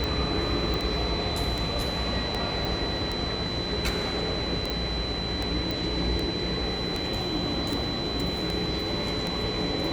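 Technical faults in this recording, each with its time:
tick 78 rpm -15 dBFS
whine 4 kHz -32 dBFS
0.74 s: pop
2.65 s: pop
4.70 s: pop
5.71 s: pop

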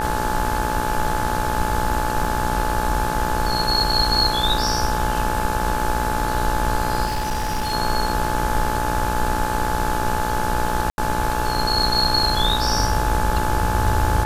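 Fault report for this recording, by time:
buzz 60 Hz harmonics 29 -26 dBFS
crackle 12 per s -30 dBFS
whine 860 Hz -24 dBFS
2.24 s: dropout 2.8 ms
7.05–7.74 s: clipped -19 dBFS
10.90–10.98 s: dropout 81 ms

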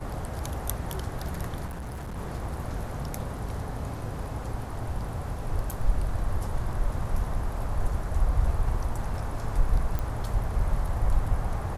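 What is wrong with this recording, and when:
1.66–2.18 s: clipped -33 dBFS
5.71 s: dropout 4 ms
9.99 s: pop -17 dBFS

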